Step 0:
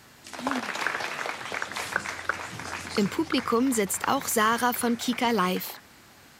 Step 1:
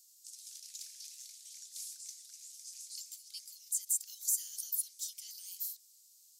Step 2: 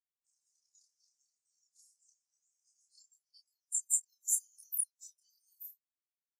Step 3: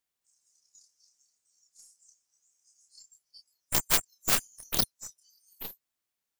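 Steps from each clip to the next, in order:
inverse Chebyshev high-pass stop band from 1000 Hz, stop band 80 dB; gain -1.5 dB
chorus voices 2, 1.4 Hz, delay 29 ms, depth 3 ms; Bessel high-pass 2500 Hz; spectral expander 2.5:1; gain +5.5 dB
tracing distortion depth 0.26 ms; in parallel at -1 dB: limiter -24.5 dBFS, peak gain reduction 8 dB; on the sum: gain +4 dB

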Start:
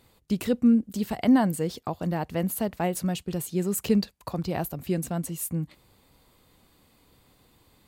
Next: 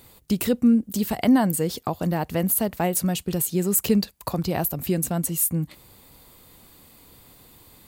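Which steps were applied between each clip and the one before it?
high shelf 9100 Hz +12 dB; in parallel at +2 dB: compressor, threshold -32 dBFS, peak gain reduction 15.5 dB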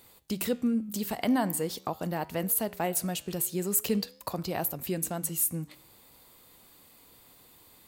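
low shelf 220 Hz -9 dB; flange 0.44 Hz, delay 9.8 ms, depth 8.7 ms, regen -88%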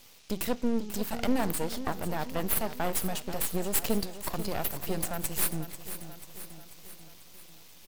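band noise 2200–6700 Hz -58 dBFS; half-wave rectifier; feedback echo 0.49 s, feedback 58%, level -12 dB; gain +3 dB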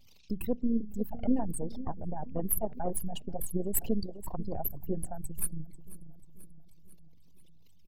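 formant sharpening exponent 3

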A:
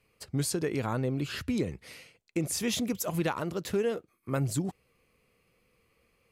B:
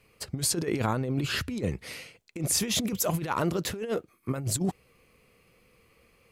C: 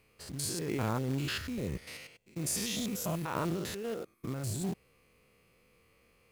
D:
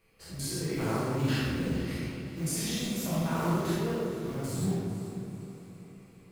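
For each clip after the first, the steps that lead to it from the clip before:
negative-ratio compressor -32 dBFS, ratio -0.5; gain +4.5 dB
stepped spectrum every 0.1 s; short-mantissa float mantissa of 2-bit; gain -3 dB
diffused feedback echo 0.457 s, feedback 49%, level -12.5 dB; reverb RT60 1.9 s, pre-delay 5 ms, DRR -8.5 dB; gain -6 dB

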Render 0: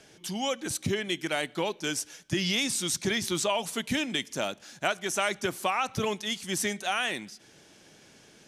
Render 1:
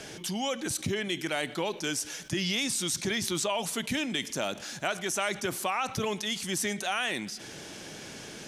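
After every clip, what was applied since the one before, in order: fast leveller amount 50%; gain -3.5 dB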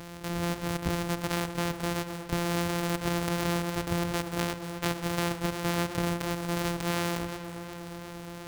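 sample sorter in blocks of 256 samples; harmonic-percussive split percussive +4 dB; warbling echo 0.12 s, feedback 80%, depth 58 cents, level -19 dB

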